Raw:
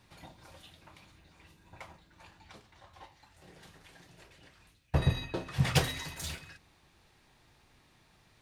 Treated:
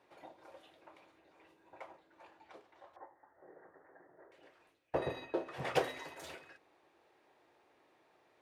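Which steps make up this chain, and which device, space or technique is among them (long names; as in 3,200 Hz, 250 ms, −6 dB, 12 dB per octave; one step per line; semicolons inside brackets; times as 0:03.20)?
filter by subtraction (in parallel: low-pass filter 2,900 Hz 12 dB per octave + polarity inversion)
0:02.96–0:04.32: on the sum: Chebyshev low-pass filter 1,900 Hz, order 6
drawn EQ curve 210 Hz 0 dB, 330 Hz +12 dB, 570 Hz +10 dB, 1,100 Hz −2 dB, 4,200 Hz −20 dB
level +4.5 dB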